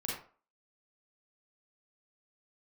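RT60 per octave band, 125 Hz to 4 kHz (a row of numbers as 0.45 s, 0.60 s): 0.35 s, 0.35 s, 0.40 s, 0.40 s, 0.35 s, 0.25 s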